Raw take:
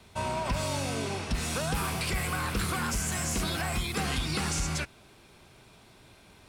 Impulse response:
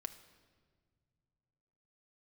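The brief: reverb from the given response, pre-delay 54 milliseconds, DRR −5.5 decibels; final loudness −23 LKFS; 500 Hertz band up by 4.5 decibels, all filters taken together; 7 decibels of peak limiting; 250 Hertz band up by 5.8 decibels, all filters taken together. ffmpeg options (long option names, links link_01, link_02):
-filter_complex "[0:a]equalizer=frequency=250:width_type=o:gain=7,equalizer=frequency=500:width_type=o:gain=4,alimiter=limit=-22dB:level=0:latency=1,asplit=2[link_01][link_02];[1:a]atrim=start_sample=2205,adelay=54[link_03];[link_02][link_03]afir=irnorm=-1:irlink=0,volume=8.5dB[link_04];[link_01][link_04]amix=inputs=2:normalize=0,volume=1.5dB"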